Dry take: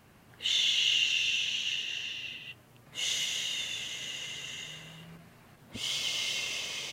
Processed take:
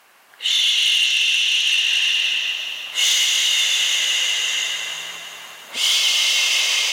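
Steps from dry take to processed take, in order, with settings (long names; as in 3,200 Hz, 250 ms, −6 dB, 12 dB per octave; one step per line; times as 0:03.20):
on a send: echo machine with several playback heads 175 ms, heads first and second, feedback 55%, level −12 dB
on the sum: speech leveller within 4 dB 0.5 s
harmonic generator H 5 −14 dB, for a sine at −16 dBFS
high-pass filter 800 Hz 12 dB per octave
level +9 dB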